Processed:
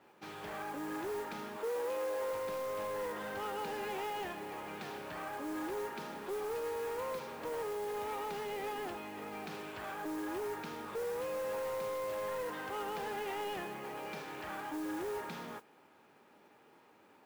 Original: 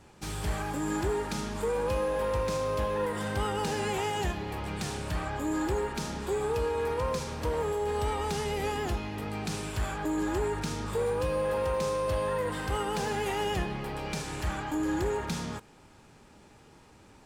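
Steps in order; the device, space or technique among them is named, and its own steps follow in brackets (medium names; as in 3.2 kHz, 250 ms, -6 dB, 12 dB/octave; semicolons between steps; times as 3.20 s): carbon microphone (band-pass 310–2800 Hz; saturation -29.5 dBFS, distortion -15 dB; modulation noise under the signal 17 dB); 1.57–2.33 s: resonant low shelf 250 Hz -8.5 dB, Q 1.5; trim -4 dB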